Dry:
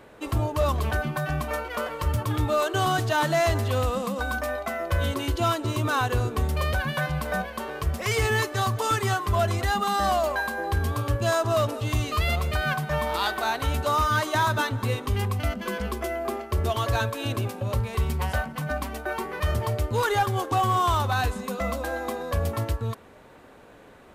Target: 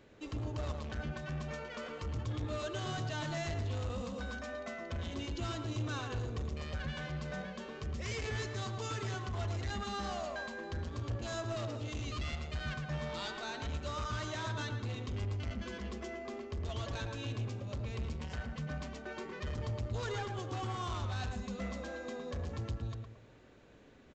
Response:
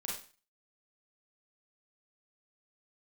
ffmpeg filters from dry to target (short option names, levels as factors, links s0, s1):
-filter_complex "[0:a]equalizer=f=930:t=o:w=1.8:g=-10,aresample=16000,asoftclip=type=tanh:threshold=0.0398,aresample=44100,asplit=2[s0][s1];[s1]adelay=112,lowpass=f=1600:p=1,volume=0.668,asplit=2[s2][s3];[s3]adelay=112,lowpass=f=1600:p=1,volume=0.36,asplit=2[s4][s5];[s5]adelay=112,lowpass=f=1600:p=1,volume=0.36,asplit=2[s6][s7];[s7]adelay=112,lowpass=f=1600:p=1,volume=0.36,asplit=2[s8][s9];[s9]adelay=112,lowpass=f=1600:p=1,volume=0.36[s10];[s0][s2][s4][s6][s8][s10]amix=inputs=6:normalize=0,volume=0.447"